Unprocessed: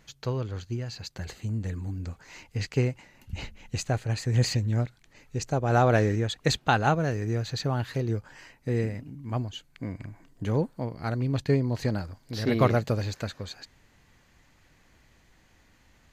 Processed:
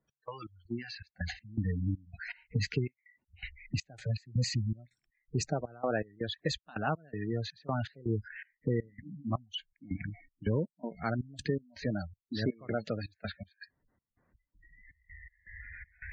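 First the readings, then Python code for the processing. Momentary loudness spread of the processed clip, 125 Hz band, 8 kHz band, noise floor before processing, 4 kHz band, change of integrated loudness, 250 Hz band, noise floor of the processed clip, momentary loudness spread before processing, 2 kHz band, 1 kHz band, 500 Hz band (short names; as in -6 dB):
14 LU, -8.0 dB, -7.0 dB, -62 dBFS, -5.5 dB, -7.5 dB, -6.0 dB, under -85 dBFS, 15 LU, -6.5 dB, -11.0 dB, -8.0 dB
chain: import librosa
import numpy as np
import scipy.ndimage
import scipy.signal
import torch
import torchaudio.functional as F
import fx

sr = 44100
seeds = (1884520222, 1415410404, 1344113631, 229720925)

p1 = fx.recorder_agc(x, sr, target_db=-13.0, rise_db_per_s=7.4, max_gain_db=30)
p2 = fx.env_lowpass(p1, sr, base_hz=1200.0, full_db=-17.0)
p3 = fx.highpass(p2, sr, hz=94.0, slope=6)
p4 = fx.notch(p3, sr, hz=840.0, q=12.0)
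p5 = fx.noise_reduce_blind(p4, sr, reduce_db=26)
p6 = fx.high_shelf(p5, sr, hz=3300.0, db=3.0)
p7 = 10.0 ** (-25.5 / 20.0) * np.tanh(p6 / 10.0 ** (-25.5 / 20.0))
p8 = p6 + (p7 * 10.0 ** (-7.5 / 20.0))
p9 = fx.step_gate(p8, sr, bpm=162, pattern='x..xx..xxx', floor_db=-24.0, edge_ms=4.5)
p10 = fx.spec_gate(p9, sr, threshold_db=-20, keep='strong')
p11 = fx.band_squash(p10, sr, depth_pct=40)
y = p11 * 10.0 ** (-7.5 / 20.0)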